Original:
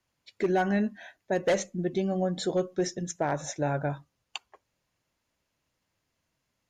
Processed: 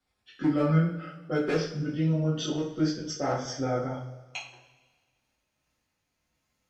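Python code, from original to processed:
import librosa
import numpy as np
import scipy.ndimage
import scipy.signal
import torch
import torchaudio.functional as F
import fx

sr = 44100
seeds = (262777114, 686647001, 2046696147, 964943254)

y = fx.pitch_glide(x, sr, semitones=-4.5, runs='ending unshifted')
y = fx.rev_double_slope(y, sr, seeds[0], early_s=0.41, late_s=1.6, knee_db=-17, drr_db=-7.5)
y = y * librosa.db_to_amplitude(-5.5)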